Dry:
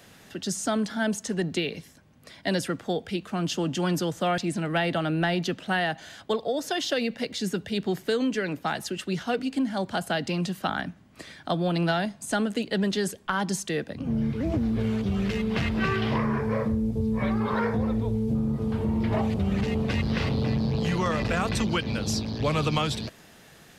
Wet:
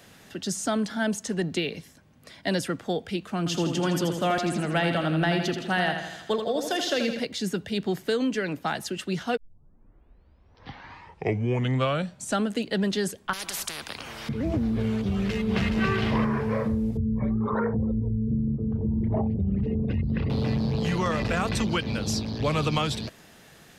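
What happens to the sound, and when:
3.38–7.2 feedback echo 82 ms, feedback 56%, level -7 dB
9.37 tape start 3.11 s
13.33–14.29 spectral compressor 10:1
15.06–15.82 echo throw 0.42 s, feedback 15%, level -5.5 dB
16.97–20.3 formant sharpening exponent 2

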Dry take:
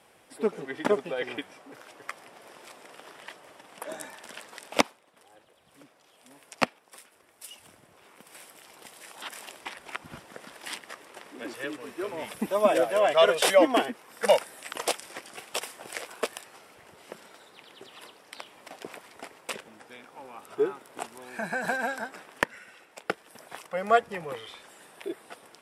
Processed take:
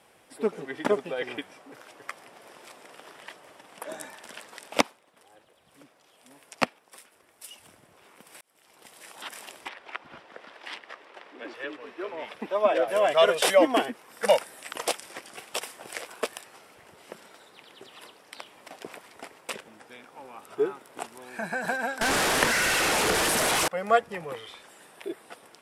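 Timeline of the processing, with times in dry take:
8.41–9.06 fade in linear
9.68–12.88 three-band isolator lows -12 dB, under 310 Hz, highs -21 dB, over 4700 Hz
22.01–23.68 delta modulation 64 kbps, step -18 dBFS

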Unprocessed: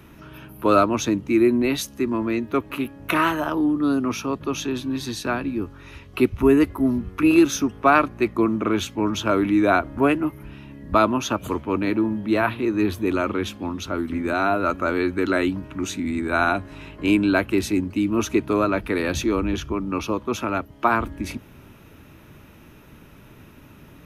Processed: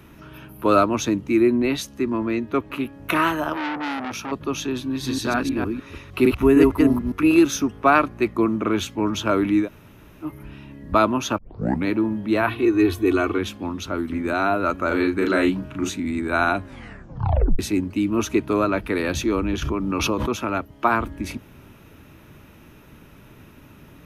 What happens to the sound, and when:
1.4–2.93 high shelf 8900 Hz -8.5 dB
3.53–4.32 core saturation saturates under 1900 Hz
4.88–7.12 reverse delay 0.153 s, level -1 dB
9.64–10.26 room tone, crossfade 0.10 s
11.38 tape start 0.48 s
12.48–13.38 comb 2.7 ms, depth 81%
14.87–15.9 doubler 37 ms -3.5 dB
16.64 tape stop 0.95 s
19.62–20.31 backwards sustainer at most 21 dB/s

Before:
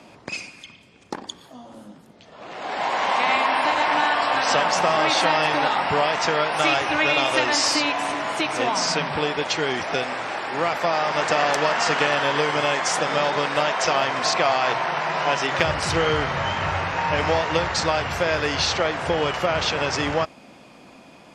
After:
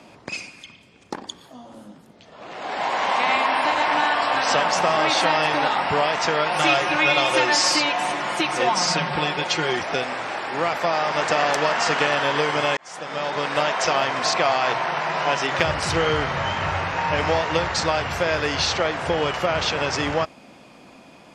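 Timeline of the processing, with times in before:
6.46–9.79 comb 5.6 ms
12.77–13.58 fade in

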